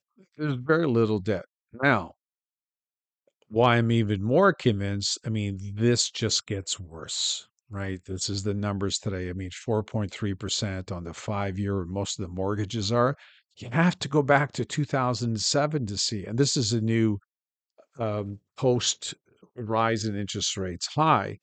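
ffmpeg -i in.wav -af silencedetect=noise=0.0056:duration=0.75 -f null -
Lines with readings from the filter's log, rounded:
silence_start: 2.11
silence_end: 3.42 | silence_duration: 1.31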